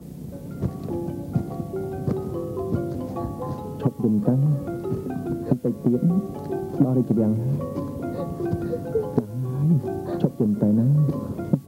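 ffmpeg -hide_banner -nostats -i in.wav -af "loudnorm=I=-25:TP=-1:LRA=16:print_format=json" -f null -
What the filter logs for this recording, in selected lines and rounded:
"input_i" : "-24.5",
"input_tp" : "-5.0",
"input_lra" : "5.3",
"input_thresh" : "-34.6",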